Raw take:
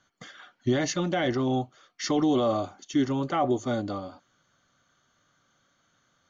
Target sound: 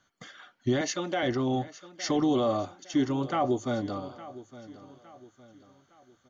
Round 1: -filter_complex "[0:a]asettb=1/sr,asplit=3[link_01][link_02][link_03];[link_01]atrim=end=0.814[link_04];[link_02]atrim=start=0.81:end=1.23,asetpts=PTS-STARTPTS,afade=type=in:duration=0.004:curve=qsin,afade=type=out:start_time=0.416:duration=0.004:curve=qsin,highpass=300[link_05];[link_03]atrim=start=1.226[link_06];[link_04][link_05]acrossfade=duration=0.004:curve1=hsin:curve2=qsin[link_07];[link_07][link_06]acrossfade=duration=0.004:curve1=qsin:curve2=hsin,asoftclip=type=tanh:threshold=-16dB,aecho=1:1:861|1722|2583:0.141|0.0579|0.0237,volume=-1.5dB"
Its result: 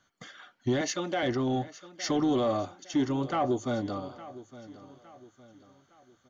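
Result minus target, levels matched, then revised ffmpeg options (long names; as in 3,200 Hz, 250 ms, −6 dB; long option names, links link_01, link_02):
soft clipping: distortion +19 dB
-filter_complex "[0:a]asettb=1/sr,asplit=3[link_01][link_02][link_03];[link_01]atrim=end=0.814[link_04];[link_02]atrim=start=0.81:end=1.23,asetpts=PTS-STARTPTS,afade=type=in:duration=0.004:curve=qsin,afade=type=out:start_time=0.416:duration=0.004:curve=qsin,highpass=300[link_05];[link_03]atrim=start=1.226[link_06];[link_04][link_05]acrossfade=duration=0.004:curve1=hsin:curve2=qsin[link_07];[link_07][link_06]acrossfade=duration=0.004:curve1=qsin:curve2=hsin,asoftclip=type=tanh:threshold=-5.5dB,aecho=1:1:861|1722|2583:0.141|0.0579|0.0237,volume=-1.5dB"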